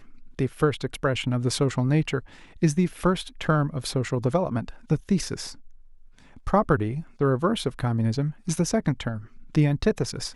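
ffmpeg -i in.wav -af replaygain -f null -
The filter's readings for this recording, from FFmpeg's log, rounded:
track_gain = +5.5 dB
track_peak = 0.280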